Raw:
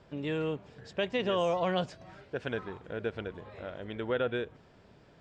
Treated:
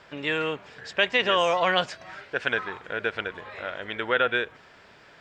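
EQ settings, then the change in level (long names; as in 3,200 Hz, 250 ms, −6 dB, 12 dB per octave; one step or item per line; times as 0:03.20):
bass and treble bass −4 dB, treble +8 dB
parametric band 1,800 Hz +15 dB 2.4 octaves
0.0 dB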